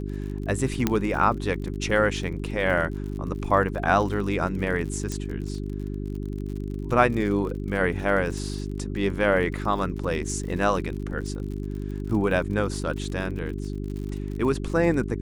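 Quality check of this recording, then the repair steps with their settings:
crackle 51 per s -34 dBFS
hum 50 Hz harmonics 8 -31 dBFS
0.87 s: pop -7 dBFS
5.12 s: pop -17 dBFS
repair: de-click; de-hum 50 Hz, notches 8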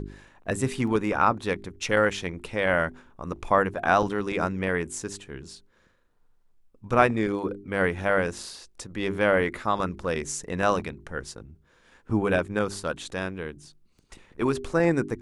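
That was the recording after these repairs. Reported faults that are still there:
0.87 s: pop

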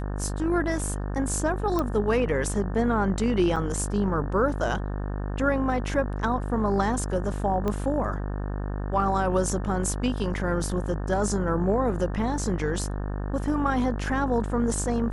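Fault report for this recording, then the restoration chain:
buzz 50 Hz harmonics 36 -30 dBFS
1.79 s: pop -14 dBFS
3.56–3.57 s: dropout 5.8 ms
7.68 s: pop -16 dBFS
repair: de-click; de-hum 50 Hz, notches 36; interpolate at 3.56 s, 5.8 ms

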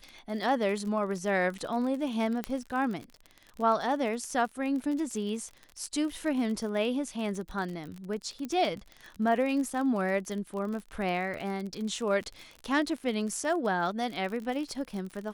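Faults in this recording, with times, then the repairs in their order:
crackle 41 per s -35 dBFS
2.44 s: pop -17 dBFS
8.45 s: pop -23 dBFS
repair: de-click

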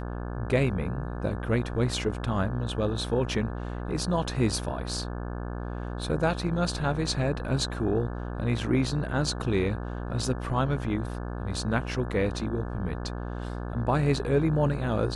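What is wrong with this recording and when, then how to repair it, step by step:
buzz 60 Hz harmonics 29 -34 dBFS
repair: de-hum 60 Hz, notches 29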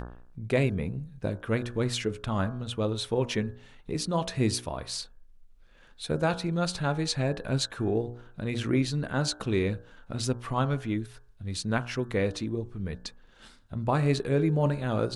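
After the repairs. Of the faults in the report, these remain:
nothing left

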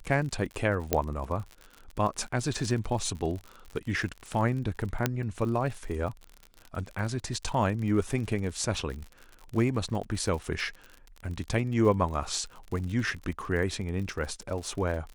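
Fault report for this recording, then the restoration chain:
crackle 51 per s -35 dBFS
0.93 s: pop -8 dBFS
5.06 s: pop -9 dBFS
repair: de-click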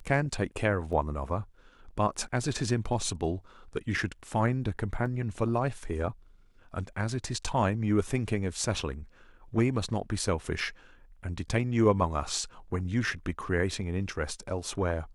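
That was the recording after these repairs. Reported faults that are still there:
0.93 s: pop
5.06 s: pop

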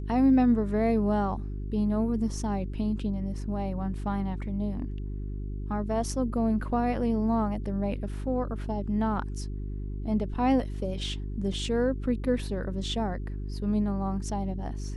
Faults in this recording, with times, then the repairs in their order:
hum 50 Hz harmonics 8 -34 dBFS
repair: de-hum 50 Hz, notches 8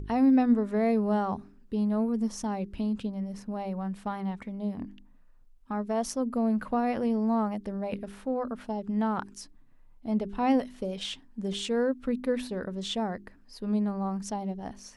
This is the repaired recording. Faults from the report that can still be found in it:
nothing left

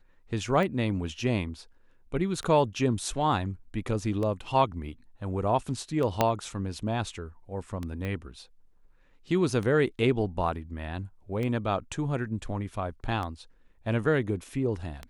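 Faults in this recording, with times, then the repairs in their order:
tick 33 1/3 rpm -21 dBFS
6.21 s: pop -8 dBFS
8.05 s: pop -22 dBFS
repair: de-click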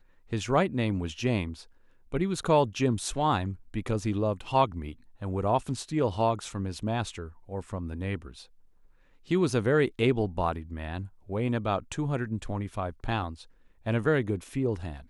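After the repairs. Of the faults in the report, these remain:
6.21 s: pop
8.05 s: pop

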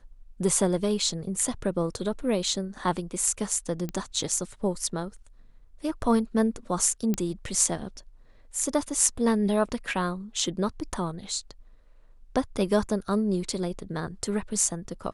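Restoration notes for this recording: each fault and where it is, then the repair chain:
3.89 s: pop -19 dBFS
7.14 s: pop -14 dBFS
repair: de-click

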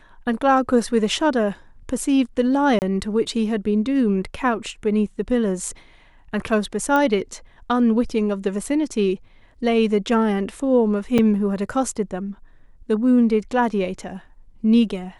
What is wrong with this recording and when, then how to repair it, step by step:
2.79–2.82 s: dropout 29 ms
6.96 s: pop -10 dBFS
11.18 s: dropout 4.9 ms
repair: de-click; interpolate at 2.79 s, 29 ms; interpolate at 11.18 s, 4.9 ms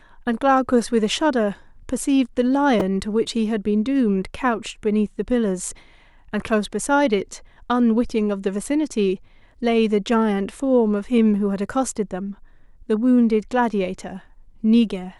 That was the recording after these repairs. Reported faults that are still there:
nothing left

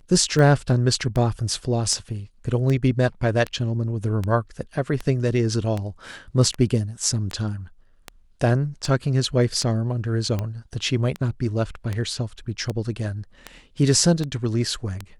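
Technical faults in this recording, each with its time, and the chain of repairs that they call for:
tick 78 rpm -14 dBFS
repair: de-click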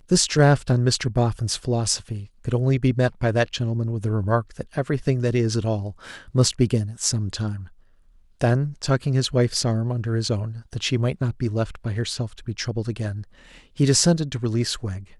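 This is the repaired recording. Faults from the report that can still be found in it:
nothing left

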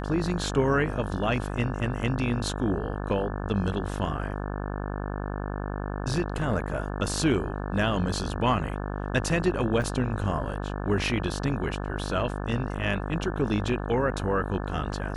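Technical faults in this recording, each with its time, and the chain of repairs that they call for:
buzz 50 Hz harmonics 35 -32 dBFS
9.82 s: dropout 2.6 ms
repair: de-hum 50 Hz, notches 35; interpolate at 9.82 s, 2.6 ms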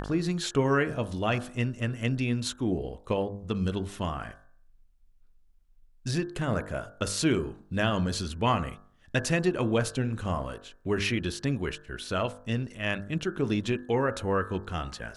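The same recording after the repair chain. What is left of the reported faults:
nothing left

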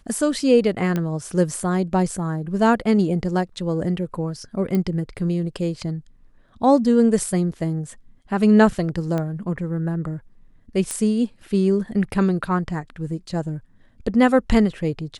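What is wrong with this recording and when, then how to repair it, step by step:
0.96 s: pop -12 dBFS
4.75 s: pop -12 dBFS
9.18 s: pop -14 dBFS
10.91 s: pop -13 dBFS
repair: de-click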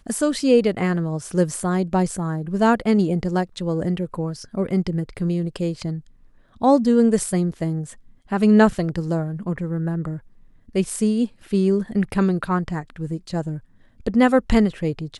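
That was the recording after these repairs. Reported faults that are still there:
4.75 s: pop

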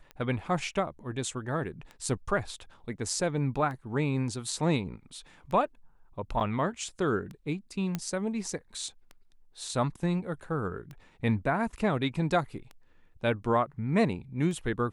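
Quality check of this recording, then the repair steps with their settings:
tick 33 1/3 rpm -29 dBFS
6.40–6.41 s: dropout 6.9 ms
7.95 s: pop -17 dBFS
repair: de-click; interpolate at 6.40 s, 6.9 ms

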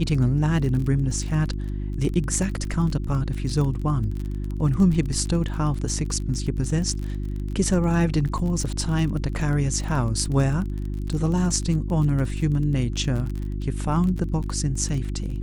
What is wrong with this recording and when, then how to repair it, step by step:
crackle 28 per s -29 dBFS
hum 50 Hz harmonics 7 -28 dBFS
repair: de-click; de-hum 50 Hz, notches 7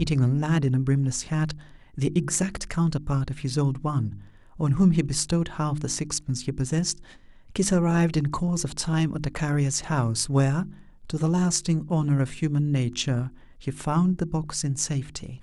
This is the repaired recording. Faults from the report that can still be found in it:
nothing left

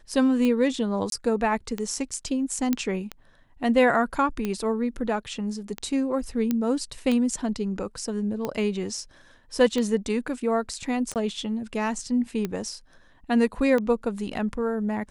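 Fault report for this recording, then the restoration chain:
tick 45 rpm -15 dBFS
1.10–1.12 s: dropout 22 ms
2.73 s: pop -10 dBFS
6.51 s: pop -12 dBFS
11.14–11.16 s: dropout 18 ms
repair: de-click; interpolate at 1.10 s, 22 ms; interpolate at 11.14 s, 18 ms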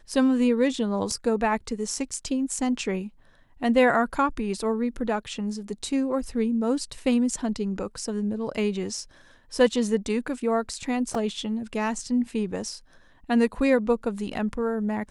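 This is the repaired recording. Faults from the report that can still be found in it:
nothing left

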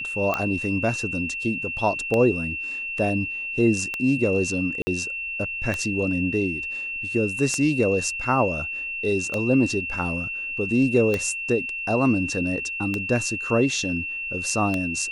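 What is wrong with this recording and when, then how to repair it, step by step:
tick 33 1/3 rpm -11 dBFS
whine 2.7 kHz -28 dBFS
4.82–4.87 s: dropout 50 ms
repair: de-click; band-stop 2.7 kHz, Q 30; interpolate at 4.82 s, 50 ms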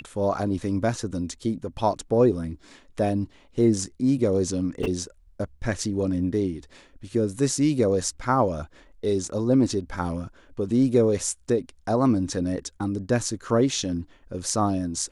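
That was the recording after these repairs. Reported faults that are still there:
nothing left

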